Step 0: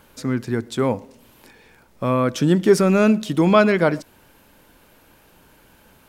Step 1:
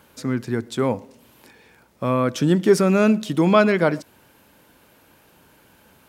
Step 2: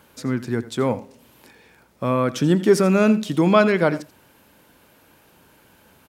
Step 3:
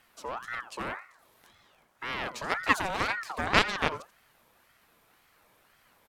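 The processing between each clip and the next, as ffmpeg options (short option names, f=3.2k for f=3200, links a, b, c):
-af "highpass=68,volume=-1dB"
-af "aecho=1:1:84:0.158"
-af "aeval=exprs='0.794*(cos(1*acos(clip(val(0)/0.794,-1,1)))-cos(1*PI/2))+0.251*(cos(3*acos(clip(val(0)/0.794,-1,1)))-cos(3*PI/2))+0.0562*(cos(7*acos(clip(val(0)/0.794,-1,1)))-cos(7*PI/2))':c=same,aeval=exprs='val(0)*sin(2*PI*1200*n/s+1200*0.4/1.9*sin(2*PI*1.9*n/s))':c=same"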